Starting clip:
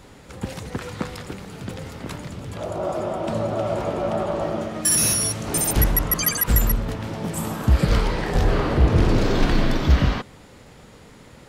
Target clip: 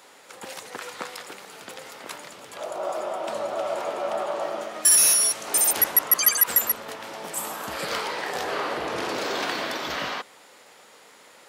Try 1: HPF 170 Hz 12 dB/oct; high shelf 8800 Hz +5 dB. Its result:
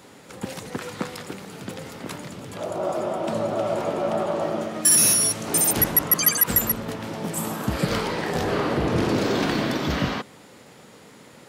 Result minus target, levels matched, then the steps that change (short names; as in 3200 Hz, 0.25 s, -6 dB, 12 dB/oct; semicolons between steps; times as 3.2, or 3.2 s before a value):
125 Hz band +19.5 dB
change: HPF 600 Hz 12 dB/oct